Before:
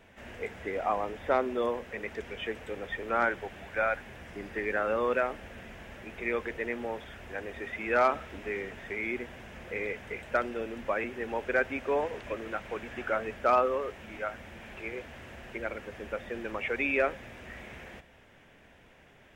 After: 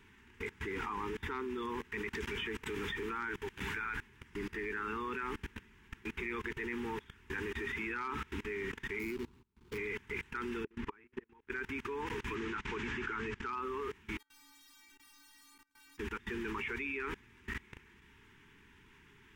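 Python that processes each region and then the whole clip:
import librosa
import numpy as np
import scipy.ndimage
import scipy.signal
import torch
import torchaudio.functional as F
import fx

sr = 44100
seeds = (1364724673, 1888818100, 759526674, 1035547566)

y = fx.chain(x, sr, fx.high_shelf(hz=4700.0, db=2.5),
    fx.band_squash(depth_pct=40), at=(2.13, 3.85))
y = fx.chain(y, sr, fx.median_filter(points=25),
    fx.gate_hold(open_db=-37.0, close_db=-45.0, hold_ms=71.0, range_db=-21, attack_ms=1.4, release_ms=100.0), at=(8.99, 9.78))
y = fx.chain(y, sr, fx.lowpass(hz=2700.0, slope=6),
    fx.gate_flip(shuts_db=-28.0, range_db=-26),
    fx.transient(attack_db=7, sustain_db=-5), at=(10.64, 11.5))
y = fx.chain(y, sr, fx.lowpass(hz=7400.0, slope=24),
    fx.band_squash(depth_pct=40), at=(12.35, 13.53))
y = fx.chain(y, sr, fx.over_compress(threshold_db=-45.0, ratio=-1.0),
    fx.overflow_wrap(gain_db=41.5),
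    fx.stiff_resonator(f0_hz=280.0, decay_s=0.48, stiffness=0.008), at=(14.18, 15.98))
y = scipy.signal.sosfilt(scipy.signal.ellip(3, 1.0, 50, [420.0, 900.0], 'bandstop', fs=sr, output='sos'), y)
y = fx.level_steps(y, sr, step_db=23)
y = F.gain(torch.from_numpy(y), 7.5).numpy()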